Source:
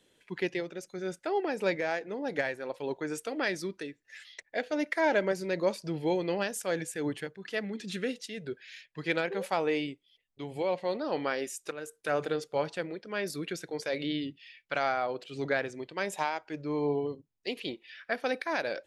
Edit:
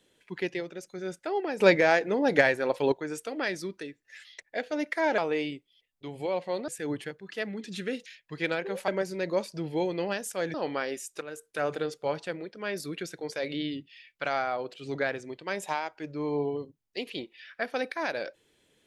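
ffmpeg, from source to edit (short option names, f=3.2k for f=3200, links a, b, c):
-filter_complex "[0:a]asplit=8[a][b][c][d][e][f][g][h];[a]atrim=end=1.602[i];[b]atrim=start=1.598:end=2.922,asetpts=PTS-STARTPTS,volume=9.5dB[j];[c]atrim=start=2.918:end=5.182[k];[d]atrim=start=9.538:end=11.042[l];[e]atrim=start=6.838:end=8.222[m];[f]atrim=start=8.718:end=9.542[n];[g]atrim=start=5.178:end=6.842[o];[h]atrim=start=11.038[p];[i][j]acrossfade=d=0.004:c1=hsin:c2=hsin[q];[q][k]acrossfade=d=0.004:c1=hsin:c2=hsin[r];[r][l]acrossfade=d=0.004:c1=hsin:c2=hsin[s];[s][m]acrossfade=d=0.004:c1=hsin:c2=hsin[t];[t][n]acrossfade=d=0.004:c1=hsin:c2=hsin[u];[u][o]acrossfade=d=0.004:c1=hsin:c2=hsin[v];[v][p]acrossfade=d=0.004:c1=hsin:c2=hsin"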